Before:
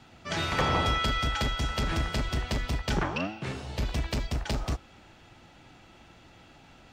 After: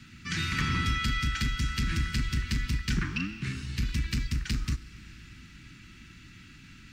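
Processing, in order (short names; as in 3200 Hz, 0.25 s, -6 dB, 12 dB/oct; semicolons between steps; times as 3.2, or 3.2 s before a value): Chebyshev band-stop 230–1800 Hz, order 2; bell 3300 Hz -5.5 dB 0.28 oct; in parallel at +0.5 dB: compressor, threshold -43 dBFS, peak gain reduction 17 dB; on the sum: Schroeder reverb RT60 3.9 s, combs from 31 ms, DRR 16.5 dB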